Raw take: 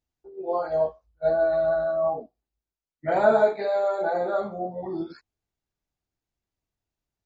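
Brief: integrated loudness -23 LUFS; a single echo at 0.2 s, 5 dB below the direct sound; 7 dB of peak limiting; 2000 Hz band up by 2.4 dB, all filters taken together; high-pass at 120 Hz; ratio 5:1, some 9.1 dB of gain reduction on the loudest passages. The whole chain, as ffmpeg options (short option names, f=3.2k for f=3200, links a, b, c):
-af "highpass=120,equalizer=f=2k:t=o:g=4,acompressor=threshold=-24dB:ratio=5,alimiter=limit=-23dB:level=0:latency=1,aecho=1:1:200:0.562,volume=7.5dB"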